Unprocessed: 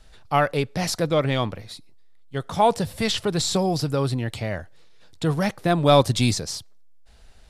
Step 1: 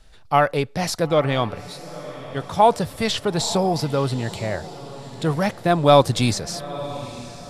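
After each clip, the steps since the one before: dynamic bell 840 Hz, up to +4 dB, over -33 dBFS, Q 0.72; echo that smears into a reverb 931 ms, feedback 45%, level -15 dB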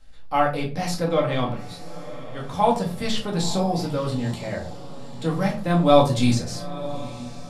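simulated room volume 260 m³, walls furnished, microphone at 2.1 m; trim -7.5 dB

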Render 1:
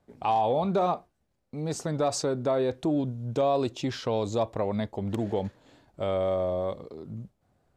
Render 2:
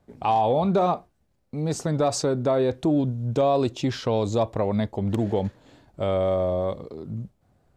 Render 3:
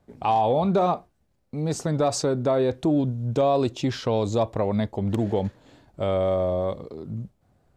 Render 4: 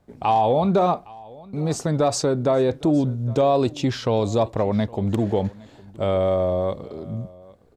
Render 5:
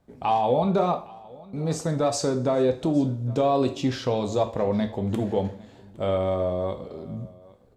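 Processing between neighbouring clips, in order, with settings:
bass shelf 230 Hz +4.5 dB; trim +3 dB
no audible change
delay 812 ms -22.5 dB; trim +2.5 dB
two-slope reverb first 0.41 s, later 2.2 s, from -26 dB, DRR 5.5 dB; trim -4 dB

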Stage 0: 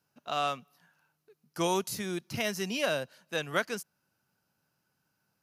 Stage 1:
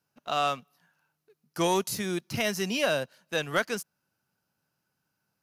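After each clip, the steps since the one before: waveshaping leveller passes 1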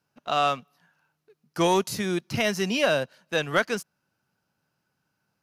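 treble shelf 7.9 kHz -9.5 dB; trim +4 dB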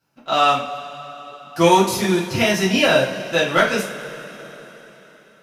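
two-slope reverb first 0.33 s, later 4 s, from -20 dB, DRR -7.5 dB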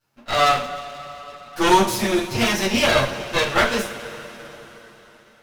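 comb filter that takes the minimum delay 8.6 ms

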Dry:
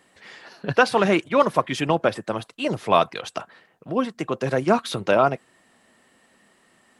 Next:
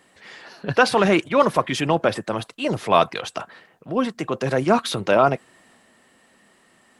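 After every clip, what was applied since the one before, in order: transient shaper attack -2 dB, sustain +3 dB; trim +2 dB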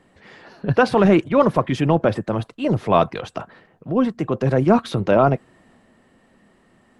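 tilt EQ -3 dB/octave; trim -1 dB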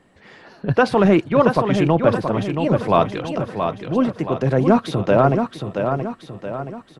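feedback delay 675 ms, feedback 46%, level -6.5 dB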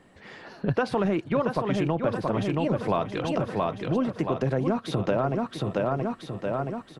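compression 6:1, threshold -22 dBFS, peak gain reduction 13 dB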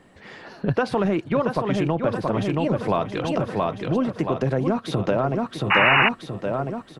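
painted sound noise, 5.70–6.09 s, 750–2900 Hz -20 dBFS; trim +3 dB

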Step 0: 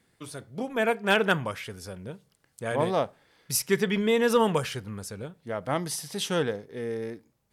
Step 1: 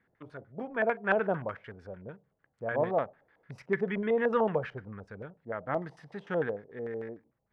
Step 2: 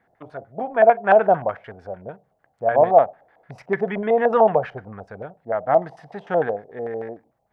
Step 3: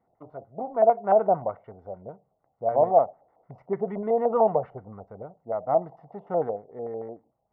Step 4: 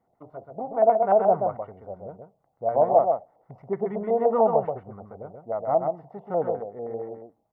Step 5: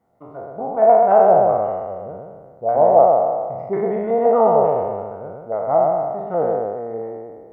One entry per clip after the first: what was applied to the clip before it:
LFO low-pass square 6.7 Hz 680–1700 Hz; trim -7 dB
peaking EQ 720 Hz +15 dB 0.67 oct; trim +4.5 dB
Savitzky-Golay filter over 65 samples; trim -5 dB
delay 130 ms -5 dB
spectral sustain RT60 1.75 s; trim +3 dB

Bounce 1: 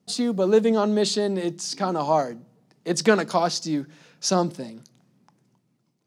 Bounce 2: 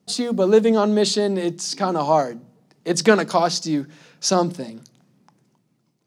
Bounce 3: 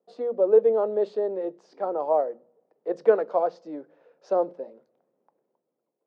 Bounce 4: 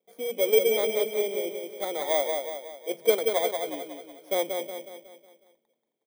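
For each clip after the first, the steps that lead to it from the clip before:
hum notches 60/120/180/240 Hz; trim +3.5 dB
ladder band-pass 560 Hz, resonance 60%; trim +3.5 dB
bit-reversed sample order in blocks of 16 samples; on a send: feedback delay 183 ms, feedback 48%, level -5 dB; on the sum: trim -3.5 dB

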